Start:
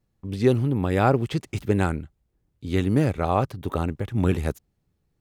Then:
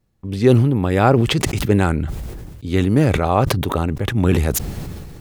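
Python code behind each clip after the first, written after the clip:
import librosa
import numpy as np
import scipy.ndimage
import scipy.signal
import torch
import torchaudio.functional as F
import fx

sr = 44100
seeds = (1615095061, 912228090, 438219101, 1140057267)

y = fx.sustainer(x, sr, db_per_s=30.0)
y = F.gain(torch.from_numpy(y), 5.0).numpy()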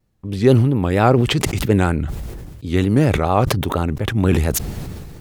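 y = fx.vibrato(x, sr, rate_hz=4.3, depth_cents=75.0)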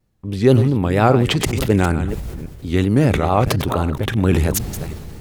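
y = fx.reverse_delay(x, sr, ms=274, wet_db=-11.0)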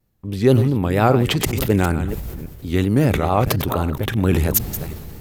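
y = fx.peak_eq(x, sr, hz=14000.0, db=13.5, octaves=0.34)
y = F.gain(torch.from_numpy(y), -1.5).numpy()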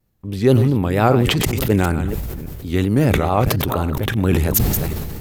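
y = fx.sustainer(x, sr, db_per_s=25.0)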